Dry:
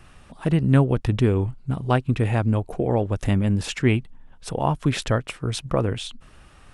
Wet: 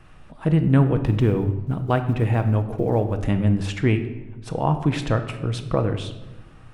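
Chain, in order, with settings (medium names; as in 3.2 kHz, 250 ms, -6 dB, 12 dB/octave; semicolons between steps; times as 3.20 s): 1.04–3.24 s: block-companded coder 7-bit; treble shelf 3.7 kHz -9.5 dB; simulated room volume 570 m³, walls mixed, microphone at 0.58 m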